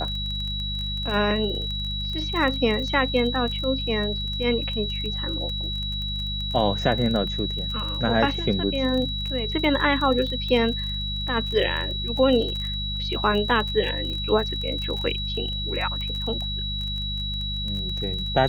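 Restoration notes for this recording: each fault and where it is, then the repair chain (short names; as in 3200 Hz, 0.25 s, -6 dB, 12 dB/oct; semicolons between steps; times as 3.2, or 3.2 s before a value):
crackle 22/s -29 dBFS
hum 50 Hz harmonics 4 -31 dBFS
tone 3900 Hz -29 dBFS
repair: de-click; de-hum 50 Hz, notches 4; notch 3900 Hz, Q 30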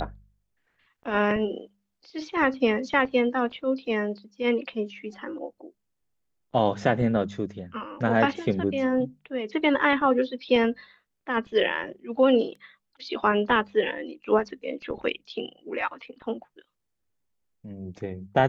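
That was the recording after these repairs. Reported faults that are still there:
none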